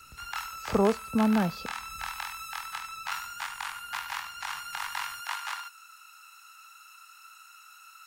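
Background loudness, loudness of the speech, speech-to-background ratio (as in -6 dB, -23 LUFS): -36.0 LUFS, -27.0 LUFS, 9.0 dB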